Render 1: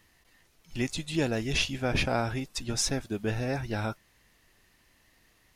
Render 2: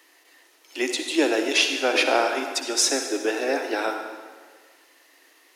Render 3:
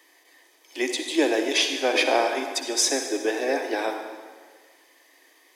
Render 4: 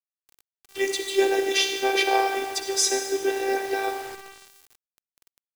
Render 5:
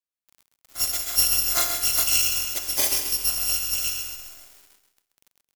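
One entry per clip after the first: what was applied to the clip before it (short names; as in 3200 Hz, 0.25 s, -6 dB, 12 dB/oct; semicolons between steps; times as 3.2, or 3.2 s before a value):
steep high-pass 280 Hz 72 dB/oct; reverb RT60 1.6 s, pre-delay 48 ms, DRR 5 dB; gain +8 dB
notch comb 1400 Hz
robotiser 389 Hz; bit-crush 7-bit; gain +2 dB
FFT order left unsorted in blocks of 256 samples; feedback echo 0.132 s, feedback 40%, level -8 dB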